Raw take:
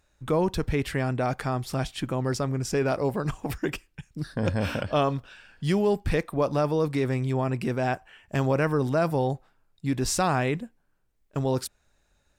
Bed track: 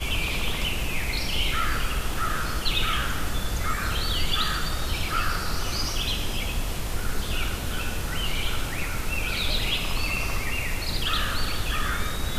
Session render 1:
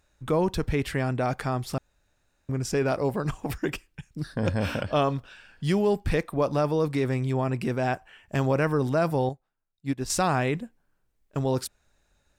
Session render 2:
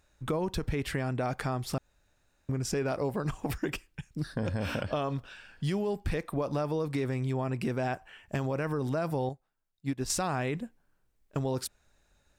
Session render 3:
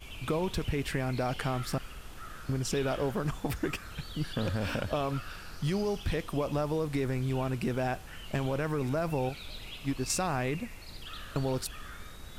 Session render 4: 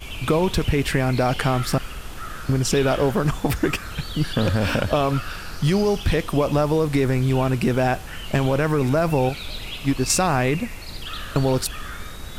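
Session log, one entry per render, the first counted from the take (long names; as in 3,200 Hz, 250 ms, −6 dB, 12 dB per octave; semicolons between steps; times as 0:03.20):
0:01.78–0:02.49: fill with room tone; 0:09.29–0:10.10: expander for the loud parts 2.5 to 1, over −34 dBFS
brickwall limiter −16.5 dBFS, peak gain reduction 4 dB; downward compressor, threshold −27 dBFS, peak gain reduction 6.5 dB
mix in bed track −18 dB
level +11 dB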